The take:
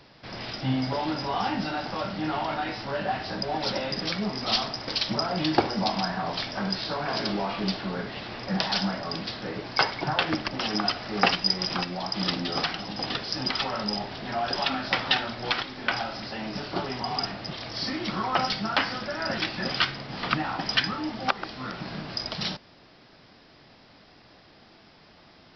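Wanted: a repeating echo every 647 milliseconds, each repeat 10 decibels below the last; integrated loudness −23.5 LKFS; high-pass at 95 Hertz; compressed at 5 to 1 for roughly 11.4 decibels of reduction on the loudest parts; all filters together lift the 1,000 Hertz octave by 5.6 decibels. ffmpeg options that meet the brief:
ffmpeg -i in.wav -af "highpass=95,equalizer=frequency=1000:width_type=o:gain=7.5,acompressor=threshold=-27dB:ratio=5,aecho=1:1:647|1294|1941|2588:0.316|0.101|0.0324|0.0104,volume=7dB" out.wav

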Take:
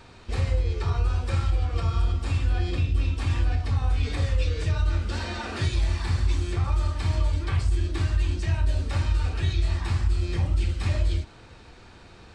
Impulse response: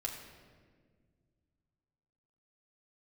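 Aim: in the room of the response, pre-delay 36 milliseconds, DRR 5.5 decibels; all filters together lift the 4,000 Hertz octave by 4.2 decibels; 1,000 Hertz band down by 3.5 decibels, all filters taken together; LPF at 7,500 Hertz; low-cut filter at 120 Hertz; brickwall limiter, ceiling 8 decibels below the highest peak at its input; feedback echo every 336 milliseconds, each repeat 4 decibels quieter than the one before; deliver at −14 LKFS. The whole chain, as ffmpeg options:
-filter_complex "[0:a]highpass=120,lowpass=7500,equalizer=frequency=1000:width_type=o:gain=-5,equalizer=frequency=4000:width_type=o:gain=5.5,alimiter=level_in=1.5dB:limit=-24dB:level=0:latency=1,volume=-1.5dB,aecho=1:1:336|672|1008|1344|1680|2016|2352|2688|3024:0.631|0.398|0.25|0.158|0.0994|0.0626|0.0394|0.0249|0.0157,asplit=2[link_01][link_02];[1:a]atrim=start_sample=2205,adelay=36[link_03];[link_02][link_03]afir=irnorm=-1:irlink=0,volume=-6.5dB[link_04];[link_01][link_04]amix=inputs=2:normalize=0,volume=18dB"

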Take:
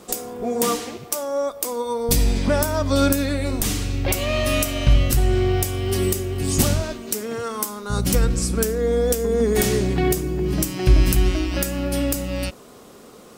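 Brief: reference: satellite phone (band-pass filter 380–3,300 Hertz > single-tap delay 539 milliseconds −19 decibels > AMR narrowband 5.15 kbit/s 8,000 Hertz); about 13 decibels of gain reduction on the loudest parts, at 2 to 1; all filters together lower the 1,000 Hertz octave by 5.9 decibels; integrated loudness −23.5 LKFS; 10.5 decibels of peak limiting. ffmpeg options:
ffmpeg -i in.wav -af "equalizer=frequency=1000:width_type=o:gain=-8,acompressor=threshold=-34dB:ratio=2,alimiter=limit=-22dB:level=0:latency=1,highpass=380,lowpass=3300,aecho=1:1:539:0.112,volume=16dB" -ar 8000 -c:a libopencore_amrnb -b:a 5150 out.amr

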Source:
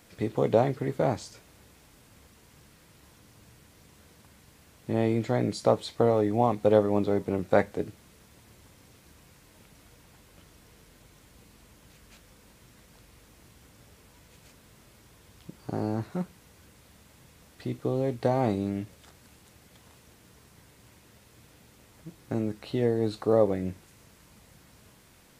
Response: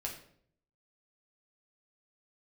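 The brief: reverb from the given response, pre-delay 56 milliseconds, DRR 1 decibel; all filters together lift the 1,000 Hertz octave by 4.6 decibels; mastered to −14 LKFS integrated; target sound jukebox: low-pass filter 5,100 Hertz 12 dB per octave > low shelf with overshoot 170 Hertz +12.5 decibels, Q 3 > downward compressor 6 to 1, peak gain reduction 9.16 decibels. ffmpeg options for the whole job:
-filter_complex "[0:a]equalizer=frequency=1000:width_type=o:gain=7.5,asplit=2[link_01][link_02];[1:a]atrim=start_sample=2205,adelay=56[link_03];[link_02][link_03]afir=irnorm=-1:irlink=0,volume=-1.5dB[link_04];[link_01][link_04]amix=inputs=2:normalize=0,lowpass=5100,lowshelf=frequency=170:width_type=q:width=3:gain=12.5,acompressor=threshold=-14dB:ratio=6,volume=6dB"

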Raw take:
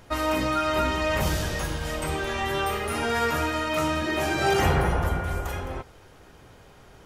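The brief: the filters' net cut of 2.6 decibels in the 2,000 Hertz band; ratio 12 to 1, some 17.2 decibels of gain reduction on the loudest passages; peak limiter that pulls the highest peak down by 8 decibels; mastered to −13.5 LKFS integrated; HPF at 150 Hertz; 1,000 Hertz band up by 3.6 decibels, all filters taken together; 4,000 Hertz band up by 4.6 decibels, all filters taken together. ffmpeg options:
ffmpeg -i in.wav -af "highpass=150,equalizer=frequency=1000:width_type=o:gain=6.5,equalizer=frequency=2000:width_type=o:gain=-8,equalizer=frequency=4000:width_type=o:gain=8.5,acompressor=threshold=-35dB:ratio=12,volume=28.5dB,alimiter=limit=-4.5dB:level=0:latency=1" out.wav

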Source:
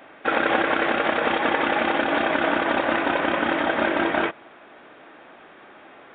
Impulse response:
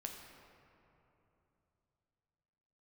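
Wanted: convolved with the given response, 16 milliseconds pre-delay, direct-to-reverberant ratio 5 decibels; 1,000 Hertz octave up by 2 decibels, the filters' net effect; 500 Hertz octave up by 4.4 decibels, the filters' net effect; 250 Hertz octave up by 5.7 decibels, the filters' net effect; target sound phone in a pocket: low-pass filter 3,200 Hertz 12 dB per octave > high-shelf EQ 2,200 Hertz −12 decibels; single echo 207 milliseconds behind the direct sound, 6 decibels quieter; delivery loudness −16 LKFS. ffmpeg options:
-filter_complex "[0:a]equalizer=frequency=250:width_type=o:gain=6,equalizer=frequency=500:width_type=o:gain=4,equalizer=frequency=1000:width_type=o:gain=3.5,aecho=1:1:207:0.501,asplit=2[link_01][link_02];[1:a]atrim=start_sample=2205,adelay=16[link_03];[link_02][link_03]afir=irnorm=-1:irlink=0,volume=-2.5dB[link_04];[link_01][link_04]amix=inputs=2:normalize=0,lowpass=3200,highshelf=frequency=2200:gain=-12,volume=2dB"

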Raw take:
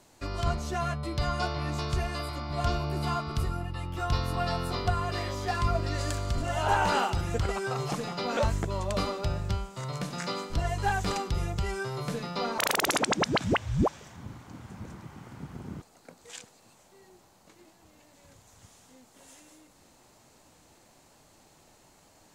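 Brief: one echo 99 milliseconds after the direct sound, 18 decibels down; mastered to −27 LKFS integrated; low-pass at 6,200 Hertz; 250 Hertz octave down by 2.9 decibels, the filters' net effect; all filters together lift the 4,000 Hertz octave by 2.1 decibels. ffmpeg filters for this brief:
ffmpeg -i in.wav -af "lowpass=6200,equalizer=frequency=250:width_type=o:gain=-4.5,equalizer=frequency=4000:width_type=o:gain=3.5,aecho=1:1:99:0.126,volume=3.5dB" out.wav

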